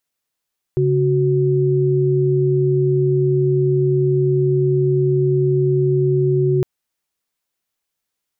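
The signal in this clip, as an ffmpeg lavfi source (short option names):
-f lavfi -i "aevalsrc='0.158*(sin(2*PI*138.59*t)+sin(2*PI*369.99*t))':d=5.86:s=44100"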